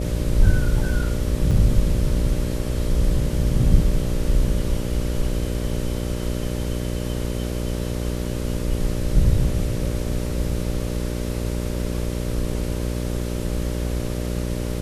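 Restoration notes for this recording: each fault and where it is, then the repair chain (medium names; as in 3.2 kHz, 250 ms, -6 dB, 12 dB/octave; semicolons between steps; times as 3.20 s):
buzz 60 Hz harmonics 10 -26 dBFS
1.51 s: dropout 4.2 ms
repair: de-hum 60 Hz, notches 10; interpolate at 1.51 s, 4.2 ms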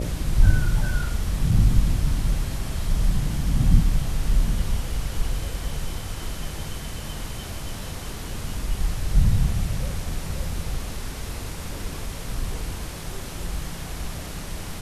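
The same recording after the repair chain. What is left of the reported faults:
nothing left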